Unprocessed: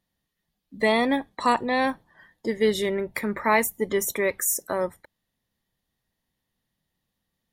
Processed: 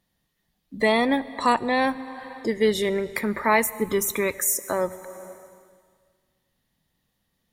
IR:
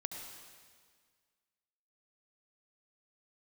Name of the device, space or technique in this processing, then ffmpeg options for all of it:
ducked reverb: -filter_complex "[0:a]asplit=3[link_01][link_02][link_03];[1:a]atrim=start_sample=2205[link_04];[link_02][link_04]afir=irnorm=-1:irlink=0[link_05];[link_03]apad=whole_len=331976[link_06];[link_05][link_06]sidechaincompress=threshold=-36dB:ratio=4:attack=8.1:release=374,volume=1dB[link_07];[link_01][link_07]amix=inputs=2:normalize=0,asettb=1/sr,asplit=3[link_08][link_09][link_10];[link_08]atrim=end=3.804[link_11];[link_09]atrim=start=3.8:end=4.34,asetpts=PTS-STARTPTS,afade=type=in:duration=0.004:curve=qsin,afade=type=out:start_time=0.536:duration=0.004:curve=qsin,aecho=1:1:0.8:0.47,atrim=end_sample=23814[link_12];[link_10]atrim=start=4.336[link_13];[link_11][link_12]acrossfade=duration=0.004:curve1=hsin:curve2=qsin[link_14];[link_14][link_13]acrossfade=duration=0.004:curve1=qsin:curve2=hsin"

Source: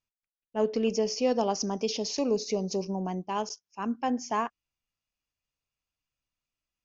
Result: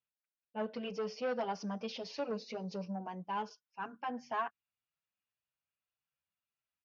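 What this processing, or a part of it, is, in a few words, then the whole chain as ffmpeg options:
barber-pole flanger into a guitar amplifier: -filter_complex "[0:a]asplit=2[link_01][link_02];[link_02]adelay=6.3,afreqshift=1.7[link_03];[link_01][link_03]amix=inputs=2:normalize=1,asoftclip=type=tanh:threshold=-24dB,highpass=110,equalizer=frequency=260:width_type=q:width=4:gain=-7,equalizer=frequency=370:width_type=q:width=4:gain=-10,equalizer=frequency=1500:width_type=q:width=4:gain=6,lowpass=frequency=4000:width=0.5412,lowpass=frequency=4000:width=1.3066,volume=-2.5dB"

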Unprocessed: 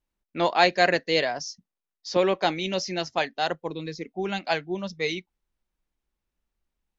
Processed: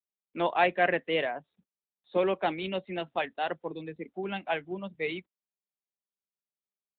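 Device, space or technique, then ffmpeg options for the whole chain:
mobile call with aggressive noise cancelling: -af "highpass=frequency=160:width=0.5412,highpass=frequency=160:width=1.3066,afftdn=noise_reduction=26:noise_floor=-46,volume=-4dB" -ar 8000 -c:a libopencore_amrnb -b:a 12200

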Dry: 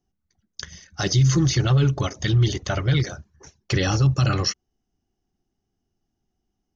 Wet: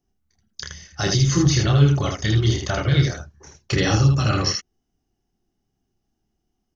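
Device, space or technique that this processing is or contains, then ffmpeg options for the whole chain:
slapback doubling: -filter_complex "[0:a]asplit=3[link_01][link_02][link_03];[link_02]adelay=28,volume=-4dB[link_04];[link_03]adelay=79,volume=-4dB[link_05];[link_01][link_04][link_05]amix=inputs=3:normalize=0"

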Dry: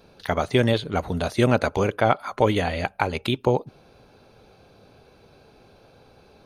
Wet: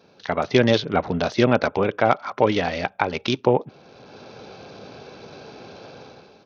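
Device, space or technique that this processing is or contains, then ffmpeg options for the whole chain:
Bluetooth headset: -af "highpass=140,dynaudnorm=framelen=190:gausssize=5:maxgain=13.5dB,aresample=16000,aresample=44100,volume=-1dB" -ar 48000 -c:a sbc -b:a 64k

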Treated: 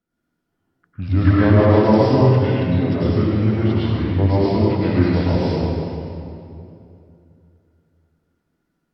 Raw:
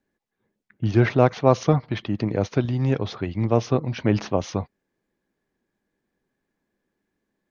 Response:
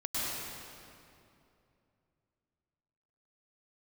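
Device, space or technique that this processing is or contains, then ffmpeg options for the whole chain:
slowed and reverbed: -filter_complex "[0:a]asetrate=37044,aresample=44100[link_01];[1:a]atrim=start_sample=2205[link_02];[link_01][link_02]afir=irnorm=-1:irlink=0,volume=-2dB"

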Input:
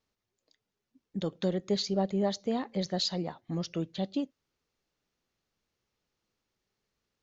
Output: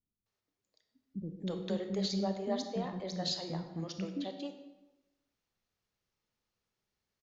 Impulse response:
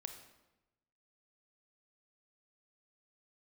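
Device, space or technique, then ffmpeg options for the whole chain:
bathroom: -filter_complex "[0:a]asettb=1/sr,asplit=3[link_01][link_02][link_03];[link_01]atrim=end=2.404[link_04];[link_02]atrim=start=2.4:end=2.84,asetpts=PTS-STARTPTS,afade=type=in:duration=0.004:curve=qsin,afade=type=out:start_time=0.436:duration=0.004:curve=qsin,highshelf=frequency=3900:gain=-7[link_05];[link_03]atrim=start=2.836[link_06];[link_04][link_05]acrossfade=duration=0.004:curve1=hsin:curve2=qsin[link_07];[link_07][link_06]acrossfade=duration=0.004:curve1=qsin:curve2=hsin,acrossover=split=340[link_08][link_09];[link_09]adelay=260[link_10];[link_08][link_10]amix=inputs=2:normalize=0[link_11];[1:a]atrim=start_sample=2205[link_12];[link_11][link_12]afir=irnorm=-1:irlink=0"

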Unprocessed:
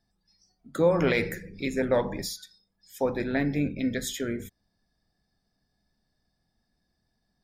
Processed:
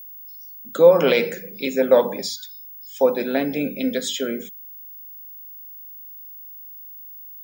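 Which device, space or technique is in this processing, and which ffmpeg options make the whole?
old television with a line whistle: -af "highpass=frequency=210:width=0.5412,highpass=frequency=210:width=1.3066,equalizer=frequency=320:width_type=q:width=4:gain=-7,equalizer=frequency=520:width_type=q:width=4:gain=5,equalizer=frequency=1900:width_type=q:width=4:gain=-9,equalizer=frequency=3000:width_type=q:width=4:gain=7,lowpass=frequency=7700:width=0.5412,lowpass=frequency=7700:width=1.3066,aeval=exprs='val(0)+0.00631*sin(2*PI*15625*n/s)':channel_layout=same,volume=7dB"

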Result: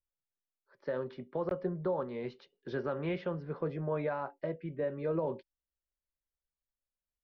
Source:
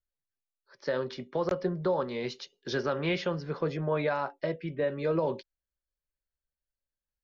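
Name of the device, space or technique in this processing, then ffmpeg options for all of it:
phone in a pocket: -af "lowpass=3200,highshelf=frequency=2000:gain=-10,volume=-4dB"

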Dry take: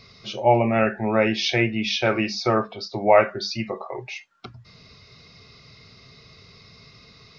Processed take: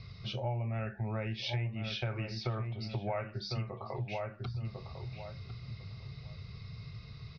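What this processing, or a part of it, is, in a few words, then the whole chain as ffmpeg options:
jukebox: -filter_complex "[0:a]lowpass=frequency=5400:width=0.5412,lowpass=frequency=5400:width=1.3066,lowpass=6100,lowshelf=frequency=180:width_type=q:width=1.5:gain=12.5,asplit=2[link_01][link_02];[link_02]adelay=1050,lowpass=frequency=1500:poles=1,volume=-10dB,asplit=2[link_03][link_04];[link_04]adelay=1050,lowpass=frequency=1500:poles=1,volume=0.18,asplit=2[link_05][link_06];[link_06]adelay=1050,lowpass=frequency=1500:poles=1,volume=0.18[link_07];[link_01][link_03][link_05][link_07]amix=inputs=4:normalize=0,acompressor=threshold=-28dB:ratio=5,volume=-6dB"

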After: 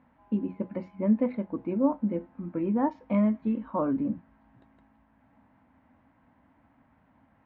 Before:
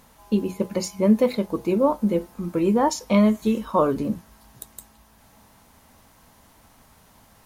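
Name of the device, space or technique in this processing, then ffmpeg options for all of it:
bass cabinet: -af "highpass=65,equalizer=frequency=270:width_type=q:width=4:gain=10,equalizer=frequency=420:width_type=q:width=4:gain=-8,equalizer=frequency=1200:width_type=q:width=4:gain=-4,lowpass=frequency=2100:width=0.5412,lowpass=frequency=2100:width=1.3066,volume=-8dB"

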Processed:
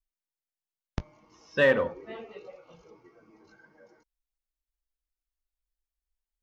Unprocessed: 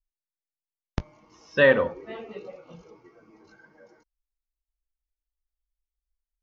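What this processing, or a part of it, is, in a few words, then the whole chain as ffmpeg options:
parallel distortion: -filter_complex "[0:a]asettb=1/sr,asplit=3[link_01][link_02][link_03];[link_01]atrim=end=2.264[link_04];[link_02]atrim=start=2.26:end=2.84,asetpts=PTS-STARTPTS,afade=type=in:duration=0.004:curve=qsin,afade=type=out:start_time=0.576:duration=0.004:curve=qsin,equalizer=frequency=210:width=1.1:gain=-10[link_05];[link_03]atrim=start=2.836[link_06];[link_04][link_05]acrossfade=duration=0.004:curve1=hsin:curve2=qsin[link_07];[link_07][link_06]acrossfade=duration=0.004:curve1=qsin:curve2=hsin,asplit=2[link_08][link_09];[link_09]asoftclip=type=hard:threshold=-19.5dB,volume=-11.5dB[link_10];[link_08][link_10]amix=inputs=2:normalize=0,volume=-5dB"

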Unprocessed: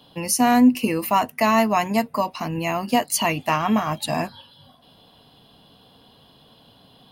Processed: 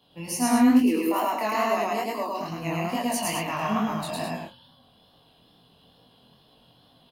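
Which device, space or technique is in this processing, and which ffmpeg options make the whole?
double-tracked vocal: -filter_complex "[0:a]asettb=1/sr,asplit=3[link_01][link_02][link_03];[link_01]atrim=end=0.704[link_04];[link_02]atrim=start=0.7:end=2.34,asetpts=PTS-STARTPTS,afade=type=in:duration=0.004:curve=qsin,afade=type=out:start_time=1.636:duration=0.004:curve=qsin,lowshelf=frequency=220:width_type=q:width=3:gain=-10.5[link_05];[link_03]atrim=start=2.336[link_06];[link_04][link_05]acrossfade=duration=0.004:curve1=hsin:curve2=qsin[link_07];[link_07][link_06]acrossfade=duration=0.004:curve1=qsin:curve2=hsin,asplit=2[link_08][link_09];[link_09]adelay=24,volume=-5.5dB[link_10];[link_08][link_10]amix=inputs=2:normalize=0,aecho=1:1:107.9|169.1|209.9:1|0.316|0.501,flanger=delay=16.5:depth=7.9:speed=2.3,volume=-7.5dB"

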